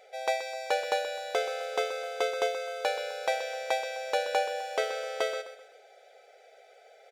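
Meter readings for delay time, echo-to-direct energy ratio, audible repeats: 129 ms, -11.5 dB, 3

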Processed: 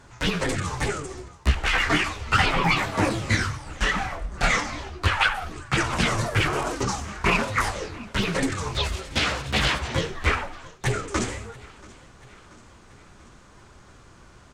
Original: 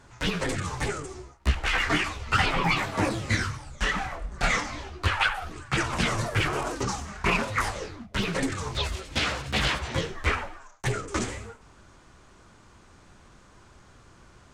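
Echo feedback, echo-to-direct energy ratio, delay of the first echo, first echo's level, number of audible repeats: 59%, -20.5 dB, 683 ms, -22.5 dB, 3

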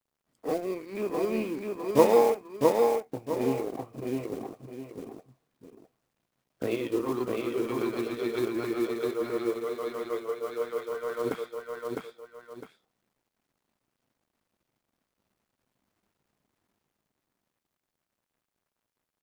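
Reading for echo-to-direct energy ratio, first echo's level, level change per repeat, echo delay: -2.5 dB, -3.0 dB, -9.5 dB, 657 ms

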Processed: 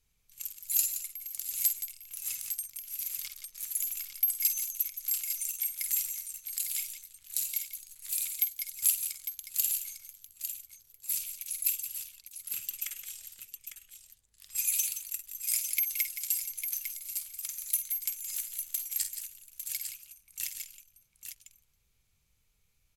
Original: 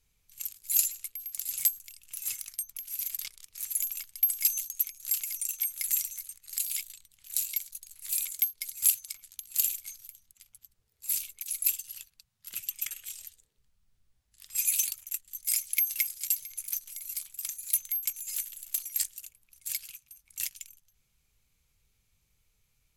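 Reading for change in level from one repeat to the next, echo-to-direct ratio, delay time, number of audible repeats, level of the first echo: no regular repeats, -4.0 dB, 50 ms, 3, -10.0 dB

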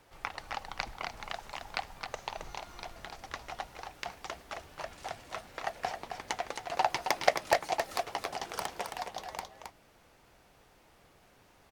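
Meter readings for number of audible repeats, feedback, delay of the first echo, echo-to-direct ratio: 1, no regular repeats, 268 ms, -6.5 dB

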